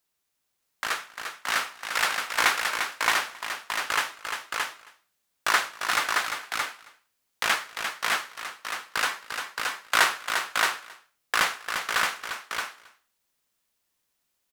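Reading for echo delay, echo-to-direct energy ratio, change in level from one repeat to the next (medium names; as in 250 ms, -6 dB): 270 ms, -2.0 dB, no regular repeats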